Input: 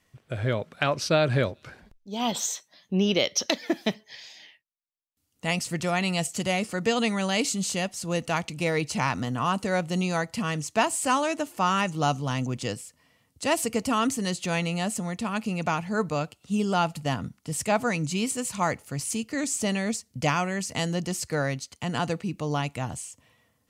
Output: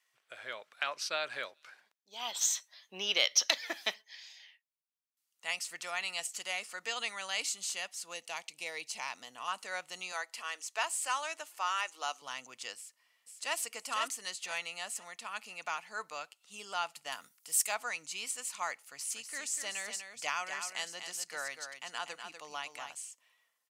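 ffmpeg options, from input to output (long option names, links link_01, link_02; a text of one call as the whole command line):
ffmpeg -i in.wav -filter_complex "[0:a]asettb=1/sr,asplit=3[link_01][link_02][link_03];[link_01]atrim=end=2.414[link_04];[link_02]atrim=start=2.41:end=4.02,asetpts=PTS-STARTPTS,afade=type=in:duration=0.004:curve=qsin,afade=type=out:start_time=1.606:duration=0.004:curve=qsin,acontrast=50[link_05];[link_03]atrim=start=4.016[link_06];[link_04][link_05]acrossfade=duration=0.004:curve1=hsin:curve2=qsin[link_07];[link_07][link_06]acrossfade=duration=0.004:curve1=qsin:curve2=hsin,asettb=1/sr,asplit=3[link_08][link_09][link_10];[link_08]atrim=end=8.144[link_11];[link_09]atrim=start=8.14:end=9.48,asetpts=PTS-STARTPTS,afade=type=in:duration=0.004:curve=qsin,afade=type=out:start_time=1.336:duration=0.004:curve=qsin,equalizer=frequency=1400:width_type=o:width=0.85:gain=-9.5[link_12];[link_10]atrim=start=9.476[link_13];[link_11][link_12]acrossfade=duration=0.004:curve1=hsin:curve2=qsin[link_14];[link_14][link_13]acrossfade=duration=0.004:curve1=qsin:curve2=hsin,asettb=1/sr,asplit=3[link_15][link_16][link_17];[link_15]atrim=end=10.124[link_18];[link_16]atrim=start=10.12:end=12.22,asetpts=PTS-STARTPTS,afade=type=in:duration=0.004:curve=qsin,afade=type=out:start_time=2.096:duration=0.004:curve=qsin,highpass=frequency=310:width=0.5412,highpass=frequency=310:width=1.3066[link_19];[link_17]atrim=start=12.216[link_20];[link_18][link_19]acrossfade=duration=0.004:curve1=hsin:curve2=qsin[link_21];[link_21][link_20]acrossfade=duration=0.004:curve1=qsin:curve2=hsin,asplit=2[link_22][link_23];[link_23]afade=type=in:start_time=12.76:duration=0.01,afade=type=out:start_time=13.57:duration=0.01,aecho=0:1:500|1000|1500|2000:0.630957|0.189287|0.0567862|0.0170358[link_24];[link_22][link_24]amix=inputs=2:normalize=0,asettb=1/sr,asplit=3[link_25][link_26][link_27];[link_25]atrim=end=17.124[link_28];[link_26]atrim=start=17.12:end=17.75,asetpts=PTS-STARTPTS,afade=type=in:duration=0.004:curve=qsin,afade=type=out:start_time=0.626:duration=0.004:curve=qsin,aemphasis=mode=production:type=50fm[link_29];[link_27]atrim=start=17.746[link_30];[link_28][link_29]acrossfade=duration=0.004:curve1=hsin:curve2=qsin[link_31];[link_31][link_30]acrossfade=duration=0.004:curve1=qsin:curve2=hsin,asplit=3[link_32][link_33][link_34];[link_32]afade=type=out:start_time=18.99:duration=0.02[link_35];[link_33]aecho=1:1:244:0.422,afade=type=in:start_time=18.99:duration=0.02,afade=type=out:start_time=22.98:duration=0.02[link_36];[link_34]afade=type=in:start_time=22.98:duration=0.02[link_37];[link_35][link_36][link_37]amix=inputs=3:normalize=0,highpass=1100,volume=-6dB" out.wav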